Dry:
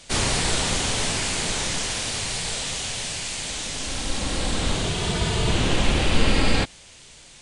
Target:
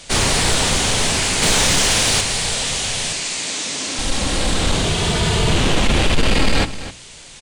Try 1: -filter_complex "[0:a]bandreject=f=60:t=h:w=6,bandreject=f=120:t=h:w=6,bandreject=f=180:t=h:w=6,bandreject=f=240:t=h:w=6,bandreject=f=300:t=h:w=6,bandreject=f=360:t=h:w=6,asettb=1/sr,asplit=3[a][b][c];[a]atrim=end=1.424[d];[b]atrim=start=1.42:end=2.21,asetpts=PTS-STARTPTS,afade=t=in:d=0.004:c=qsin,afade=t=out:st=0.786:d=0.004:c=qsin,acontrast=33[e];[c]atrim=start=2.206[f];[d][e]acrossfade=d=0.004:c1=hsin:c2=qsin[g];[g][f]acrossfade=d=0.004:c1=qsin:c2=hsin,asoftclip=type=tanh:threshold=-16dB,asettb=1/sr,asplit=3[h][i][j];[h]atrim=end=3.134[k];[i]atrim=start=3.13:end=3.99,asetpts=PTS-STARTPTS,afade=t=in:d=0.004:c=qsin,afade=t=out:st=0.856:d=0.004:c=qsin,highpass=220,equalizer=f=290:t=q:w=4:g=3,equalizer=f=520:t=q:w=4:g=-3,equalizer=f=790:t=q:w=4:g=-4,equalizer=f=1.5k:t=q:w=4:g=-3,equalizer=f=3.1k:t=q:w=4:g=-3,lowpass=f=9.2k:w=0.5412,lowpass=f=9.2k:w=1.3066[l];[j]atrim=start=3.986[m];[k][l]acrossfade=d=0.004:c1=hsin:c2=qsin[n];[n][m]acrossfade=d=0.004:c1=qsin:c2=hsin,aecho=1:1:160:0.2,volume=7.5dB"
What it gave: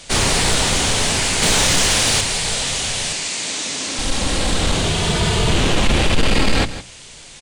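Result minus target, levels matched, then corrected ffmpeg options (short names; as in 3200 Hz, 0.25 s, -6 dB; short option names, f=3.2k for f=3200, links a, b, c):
echo 97 ms early
-filter_complex "[0:a]bandreject=f=60:t=h:w=6,bandreject=f=120:t=h:w=6,bandreject=f=180:t=h:w=6,bandreject=f=240:t=h:w=6,bandreject=f=300:t=h:w=6,bandreject=f=360:t=h:w=6,asettb=1/sr,asplit=3[a][b][c];[a]atrim=end=1.424[d];[b]atrim=start=1.42:end=2.21,asetpts=PTS-STARTPTS,afade=t=in:d=0.004:c=qsin,afade=t=out:st=0.786:d=0.004:c=qsin,acontrast=33[e];[c]atrim=start=2.206[f];[d][e]acrossfade=d=0.004:c1=hsin:c2=qsin[g];[g][f]acrossfade=d=0.004:c1=qsin:c2=hsin,asoftclip=type=tanh:threshold=-16dB,asettb=1/sr,asplit=3[h][i][j];[h]atrim=end=3.134[k];[i]atrim=start=3.13:end=3.99,asetpts=PTS-STARTPTS,afade=t=in:d=0.004:c=qsin,afade=t=out:st=0.856:d=0.004:c=qsin,highpass=220,equalizer=f=290:t=q:w=4:g=3,equalizer=f=520:t=q:w=4:g=-3,equalizer=f=790:t=q:w=4:g=-4,equalizer=f=1.5k:t=q:w=4:g=-3,equalizer=f=3.1k:t=q:w=4:g=-3,lowpass=f=9.2k:w=0.5412,lowpass=f=9.2k:w=1.3066[l];[j]atrim=start=3.986[m];[k][l]acrossfade=d=0.004:c1=hsin:c2=qsin[n];[n][m]acrossfade=d=0.004:c1=qsin:c2=hsin,aecho=1:1:257:0.2,volume=7.5dB"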